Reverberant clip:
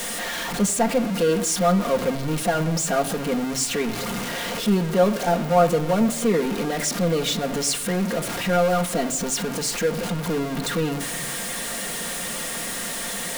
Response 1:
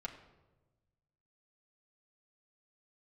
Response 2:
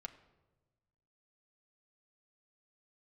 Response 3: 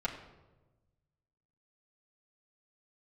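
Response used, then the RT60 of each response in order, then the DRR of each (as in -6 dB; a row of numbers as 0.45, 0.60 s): 2; not exponential, not exponential, not exponential; -3.5, 2.5, -8.0 dB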